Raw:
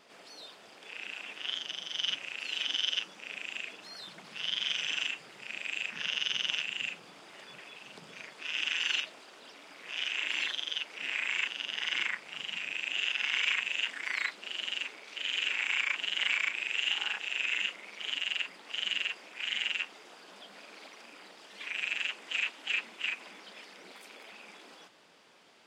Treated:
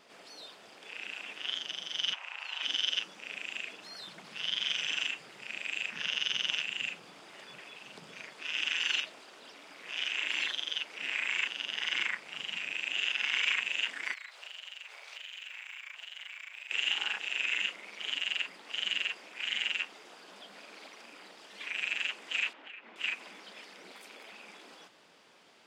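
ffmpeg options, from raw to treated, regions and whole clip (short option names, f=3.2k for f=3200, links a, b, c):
-filter_complex "[0:a]asettb=1/sr,asplit=3[a][b][c];[a]atrim=end=2.134[d];[b]atrim=start=2.13:end=2.63,asetpts=PTS-STARTPTS,afade=t=in:d=0.004:c=qsin,afade=t=out:st=0.496:d=0.004:c=qsin,highpass=f=920:t=q:w=2.8,highshelf=f=3.4k:g=-11[e];[c]atrim=start=2.626[f];[d][e]acrossfade=d=0.004:c1=hsin:c2=qsin[g];[g][f]acrossfade=d=0.004:c1=qsin:c2=hsin,asettb=1/sr,asplit=3[h][i][j];[h]atrim=end=14.134[k];[i]atrim=start=14.13:end=16.71,asetpts=PTS-STARTPTS,afade=t=in:d=0.004:c=qsin,afade=t=out:st=2.576:d=0.004:c=qsin,highpass=f=560:w=0.5412,highpass=f=560:w=1.3066,acompressor=threshold=-40dB:ratio=12:attack=3.2:release=140:knee=1:detection=peak,acrusher=bits=8:mode=log:mix=0:aa=0.000001[l];[j]atrim=start=16.706[m];[k][l]acrossfade=d=0.004:c1=hsin:c2=qsin[n];[n][m]acrossfade=d=0.004:c1=qsin:c2=hsin,asettb=1/sr,asplit=3[o][p][q];[o]atrim=end=22.534[r];[p]atrim=start=22.53:end=22.96,asetpts=PTS-STARTPTS,afade=t=in:d=0.004:c=qsin,afade=t=out:st=0.426:d=0.004:c=qsin,highpass=220,lowpass=2.2k,acompressor=threshold=-44dB:ratio=5:attack=3.2:release=140:knee=1:detection=peak[s];[q]atrim=start=22.956[t];[r][s]acrossfade=d=0.004:c1=hsin:c2=qsin[u];[u][t]acrossfade=d=0.004:c1=qsin:c2=hsin"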